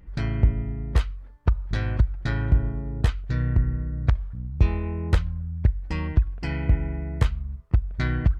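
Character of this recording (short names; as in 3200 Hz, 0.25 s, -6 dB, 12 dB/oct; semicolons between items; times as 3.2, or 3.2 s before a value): noise floor -40 dBFS; spectral tilt -7.5 dB/oct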